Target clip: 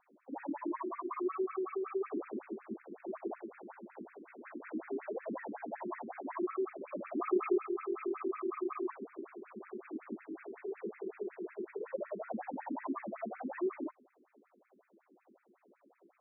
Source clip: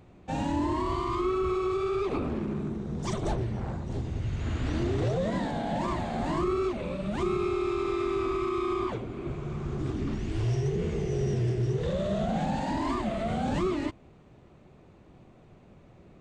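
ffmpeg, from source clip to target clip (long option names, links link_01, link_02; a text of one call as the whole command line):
ffmpeg -i in.wav -filter_complex "[0:a]asettb=1/sr,asplit=3[link_01][link_02][link_03];[link_01]atrim=end=2.824[link_04];[link_02]atrim=start=2.82:end=3.6,asetpts=PTS-STARTPTS,afade=type=in:duration=0.004:curve=qsin,afade=type=out:start_time=0.776:duration=0.004:curve=qsin,bandreject=frequency=56.58:width_type=h:width=4,bandreject=frequency=113.16:width_type=h:width=4,bandreject=frequency=169.74:width_type=h:width=4,bandreject=frequency=226.32:width_type=h:width=4[link_05];[link_03]atrim=start=3.596[link_06];[link_04][link_05]acrossfade=duration=0.004:curve1=hsin:curve2=qsin[link_07];[link_07][link_06]acrossfade=duration=0.004:curve1=qsin:curve2=hsin,asettb=1/sr,asplit=3[link_08][link_09][link_10];[link_08]atrim=end=6.924[link_11];[link_09]atrim=start=6.92:end=7.58,asetpts=PTS-STARTPTS,afade=type=in:duration=0.004:curve=qsin,afade=type=out:start_time=0.656:duration=0.004:curve=qsin,acontrast=46[link_12];[link_10]atrim=start=7.576[link_13];[link_11][link_12]acrossfade=duration=0.004:curve1=hsin:curve2=qsin[link_14];[link_14][link_13]acrossfade=duration=0.004:curve1=qsin:curve2=hsin,asettb=1/sr,asplit=3[link_15][link_16][link_17];[link_15]atrim=end=11.644[link_18];[link_16]atrim=start=11.64:end=12.31,asetpts=PTS-STARTPTS,afade=type=in:duration=0.004:curve=qsin,afade=type=out:start_time=0.666:duration=0.004:curve=qsin,aecho=1:1:2.1:0.35,atrim=end_sample=29547[link_19];[link_17]atrim=start=12.306[link_20];[link_18][link_19]acrossfade=duration=0.004:curve1=hsin:curve2=qsin[link_21];[link_21][link_20]acrossfade=duration=0.004:curve1=qsin:curve2=hsin,acrusher=bits=4:mode=log:mix=0:aa=0.000001,afftfilt=real='re*between(b*sr/1024,280*pow(1900/280,0.5+0.5*sin(2*PI*5.4*pts/sr))/1.41,280*pow(1900/280,0.5+0.5*sin(2*PI*5.4*pts/sr))*1.41)':imag='im*between(b*sr/1024,280*pow(1900/280,0.5+0.5*sin(2*PI*5.4*pts/sr))/1.41,280*pow(1900/280,0.5+0.5*sin(2*PI*5.4*pts/sr))*1.41)':win_size=1024:overlap=0.75,volume=-3.5dB" out.wav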